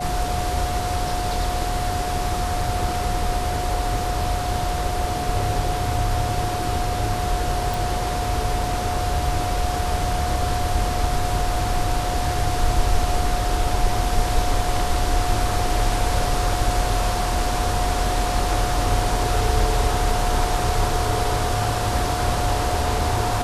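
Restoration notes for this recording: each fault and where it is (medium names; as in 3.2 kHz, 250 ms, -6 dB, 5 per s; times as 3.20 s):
whine 720 Hz -26 dBFS
7.74 s: pop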